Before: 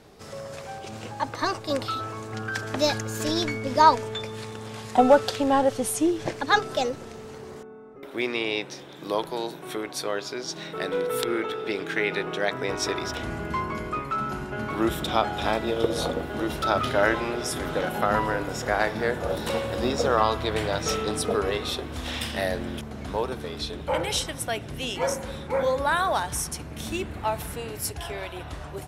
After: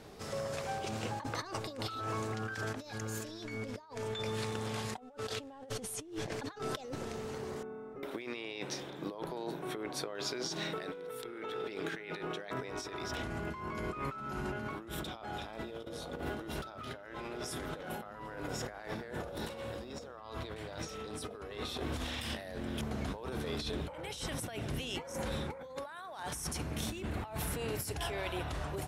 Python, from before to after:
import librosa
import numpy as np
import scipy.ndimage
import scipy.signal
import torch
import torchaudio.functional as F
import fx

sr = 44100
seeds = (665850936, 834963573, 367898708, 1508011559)

y = fx.high_shelf(x, sr, hz=2200.0, db=-9.0, at=(8.9, 10.15))
y = fx.highpass(y, sr, hz=fx.line((25.75, 420.0), (26.34, 200.0)), slope=6, at=(25.75, 26.34), fade=0.02)
y = fx.over_compress(y, sr, threshold_db=-35.0, ratio=-1.0)
y = y * librosa.db_to_amplitude(-6.5)